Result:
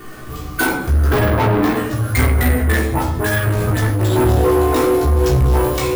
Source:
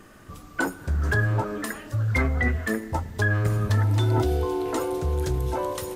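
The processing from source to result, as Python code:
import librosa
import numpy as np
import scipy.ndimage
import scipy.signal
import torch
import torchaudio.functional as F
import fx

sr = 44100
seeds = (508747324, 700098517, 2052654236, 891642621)

y = fx.dispersion(x, sr, late='highs', ms=85.0, hz=2600.0, at=(2.63, 4.45))
y = np.repeat(y[::4], 4)[:len(y)]
y = fx.graphic_eq(y, sr, hz=(250, 500, 1000, 2000, 8000), db=(10, 5, 7, -5, -11), at=(1.1, 1.76))
y = fx.room_shoebox(y, sr, seeds[0], volume_m3=960.0, walls='furnished', distance_m=3.4)
y = 10.0 ** (-21.0 / 20.0) * np.tanh(y / 10.0 ** (-21.0 / 20.0))
y = fx.high_shelf(y, sr, hz=8000.0, db=5.5)
y = fx.doubler(y, sr, ms=16.0, db=-3.0)
y = F.gain(torch.from_numpy(y), 7.5).numpy()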